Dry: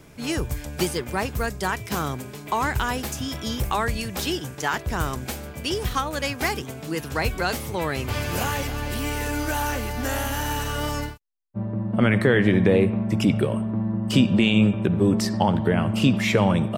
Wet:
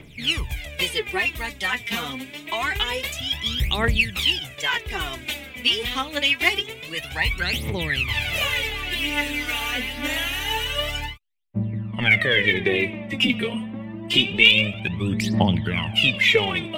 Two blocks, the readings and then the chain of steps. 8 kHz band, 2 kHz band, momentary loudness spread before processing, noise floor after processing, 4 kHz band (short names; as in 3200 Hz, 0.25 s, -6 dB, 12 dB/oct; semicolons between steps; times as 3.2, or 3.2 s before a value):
-3.0 dB, +7.5 dB, 10 LU, -41 dBFS, +10.5 dB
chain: band shelf 2700 Hz +14.5 dB 1.2 oct; phaser 0.26 Hz, delay 4.4 ms, feedback 77%; gain -7 dB